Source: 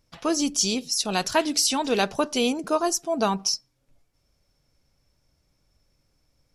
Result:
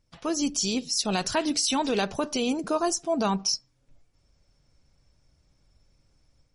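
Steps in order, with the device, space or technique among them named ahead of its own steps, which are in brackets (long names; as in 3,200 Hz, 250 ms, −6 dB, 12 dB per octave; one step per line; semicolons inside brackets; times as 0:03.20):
low-shelf EQ 190 Hz +5.5 dB
low-bitrate web radio (automatic gain control gain up to 6 dB; brickwall limiter −10 dBFS, peak gain reduction 6 dB; level −5.5 dB; MP3 40 kbit/s 48,000 Hz)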